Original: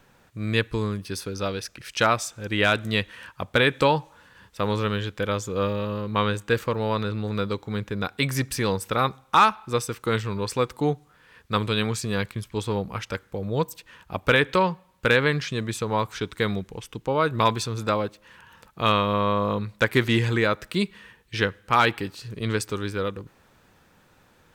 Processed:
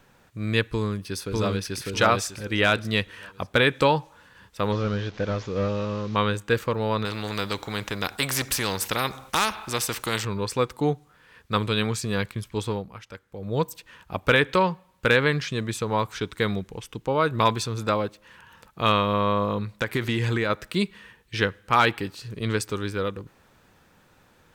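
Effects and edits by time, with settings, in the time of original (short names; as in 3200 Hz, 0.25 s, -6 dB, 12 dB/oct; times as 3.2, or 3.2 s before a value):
0.7–1.82 echo throw 0.6 s, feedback 25%, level -0.5 dB
4.72–6.16 delta modulation 32 kbps, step -40.5 dBFS
7.05–10.25 spectral compressor 2:1
12.68–13.54 dip -11 dB, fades 0.33 s quadratic
19.44–20.5 compressor, threshold -20 dBFS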